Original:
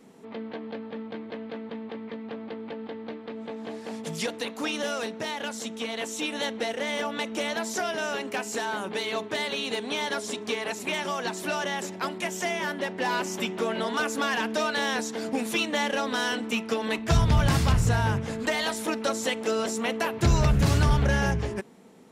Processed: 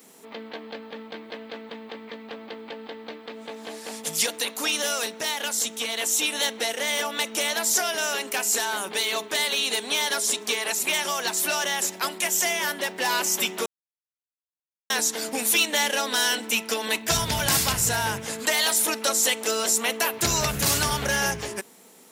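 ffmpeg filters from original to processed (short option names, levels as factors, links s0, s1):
-filter_complex "[0:a]asettb=1/sr,asplit=3[s0][s1][s2];[s0]atrim=end=15.514[s3];[s1]atrim=start=15.51:end=18.27,asetpts=PTS-STARTPTS,afade=t=in:d=0.004:c=qsin,afade=t=out:st=2.756:d=0.004:c=qsin,bandreject=f=1200:w=12[s4];[s2]atrim=start=18.266[s5];[s3][s4]acrossfade=d=0.004:c1=hsin:c2=qsin[s6];[s6][s5]acrossfade=d=0.004:c1=qsin:c2=hsin,asplit=3[s7][s8][s9];[s7]atrim=end=13.66,asetpts=PTS-STARTPTS,afade=t=out:st=13.656:d=0.004:c=hsin[s10];[s8]atrim=start=13.66:end=14.9,asetpts=PTS-STARTPTS,volume=0[s11];[s9]atrim=start=14.9,asetpts=PTS-STARTPTS,afade=t=in:d=0.004:c=hsin[s12];[s10][s11][s12]concat=n=3:v=0:a=1,aemphasis=mode=production:type=riaa,acontrast=66,volume=0.596"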